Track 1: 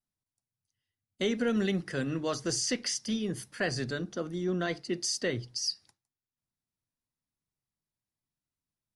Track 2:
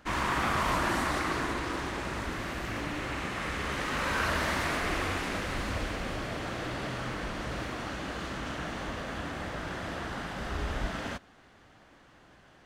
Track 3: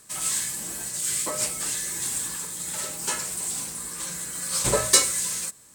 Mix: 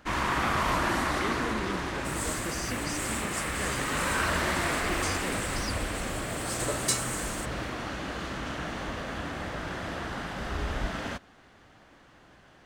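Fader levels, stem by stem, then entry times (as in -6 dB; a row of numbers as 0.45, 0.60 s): -8.0, +1.5, -10.5 dB; 0.00, 0.00, 1.95 s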